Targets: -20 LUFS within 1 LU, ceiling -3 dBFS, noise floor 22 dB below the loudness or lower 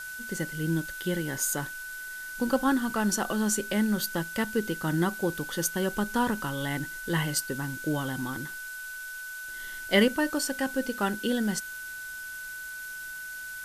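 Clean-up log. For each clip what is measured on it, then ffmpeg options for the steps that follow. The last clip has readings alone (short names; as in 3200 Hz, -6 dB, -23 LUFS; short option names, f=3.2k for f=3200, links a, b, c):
steady tone 1500 Hz; tone level -37 dBFS; noise floor -39 dBFS; noise floor target -52 dBFS; loudness -30.0 LUFS; peak -10.0 dBFS; loudness target -20.0 LUFS
-> -af "bandreject=f=1.5k:w=30"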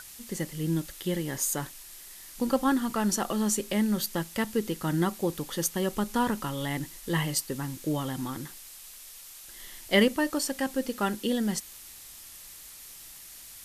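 steady tone none; noise floor -47 dBFS; noise floor target -51 dBFS
-> -af "afftdn=nr=6:nf=-47"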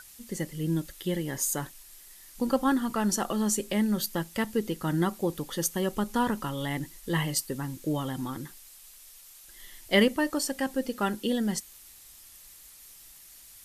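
noise floor -52 dBFS; loudness -29.0 LUFS; peak -9.5 dBFS; loudness target -20.0 LUFS
-> -af "volume=9dB,alimiter=limit=-3dB:level=0:latency=1"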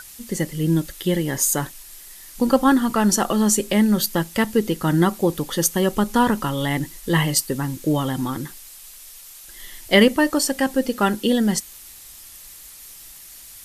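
loudness -20.5 LUFS; peak -3.0 dBFS; noise floor -43 dBFS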